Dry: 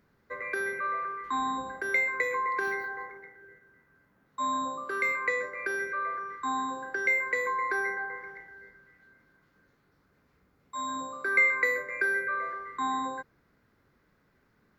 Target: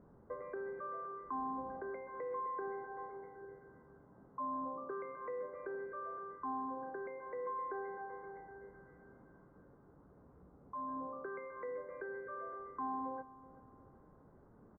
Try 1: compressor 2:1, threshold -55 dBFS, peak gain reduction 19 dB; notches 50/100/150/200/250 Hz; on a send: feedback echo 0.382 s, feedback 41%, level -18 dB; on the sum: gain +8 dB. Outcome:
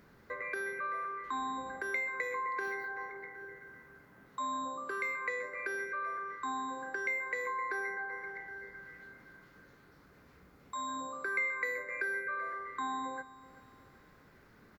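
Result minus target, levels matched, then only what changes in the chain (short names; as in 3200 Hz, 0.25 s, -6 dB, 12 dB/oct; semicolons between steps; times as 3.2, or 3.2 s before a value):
1000 Hz band -3.0 dB
add after compressor: LPF 1000 Hz 24 dB/oct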